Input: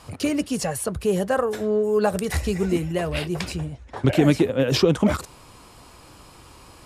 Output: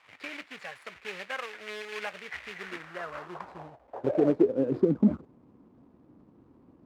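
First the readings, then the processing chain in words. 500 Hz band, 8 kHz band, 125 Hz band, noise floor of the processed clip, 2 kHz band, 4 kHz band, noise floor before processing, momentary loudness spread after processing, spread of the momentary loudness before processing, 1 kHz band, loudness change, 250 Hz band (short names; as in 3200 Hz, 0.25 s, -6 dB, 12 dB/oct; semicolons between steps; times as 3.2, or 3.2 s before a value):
-8.5 dB, under -20 dB, -13.5 dB, -60 dBFS, -6.0 dB, -14.0 dB, -48 dBFS, 18 LU, 9 LU, -10.5 dB, -7.5 dB, -7.0 dB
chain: median filter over 15 samples; companded quantiser 4-bit; band-pass sweep 2200 Hz -> 240 Hz, 2.5–5.01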